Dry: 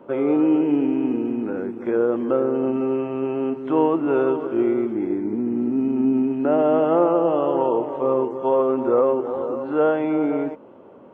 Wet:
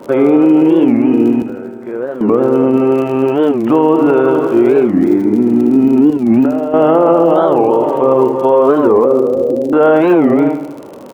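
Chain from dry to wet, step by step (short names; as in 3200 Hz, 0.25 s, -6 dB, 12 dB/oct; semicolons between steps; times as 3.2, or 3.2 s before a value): 6.11–6.74 negative-ratio compressor -24 dBFS, ratio -0.5; 9.05–9.73 steep low-pass 600 Hz 36 dB/oct; crackle 49/s -36 dBFS; 1.42–2.23 resonator 130 Hz, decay 2 s, mix 80%; feedback echo 77 ms, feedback 58%, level -10 dB; maximiser +13.5 dB; record warp 45 rpm, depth 250 cents; gain -1 dB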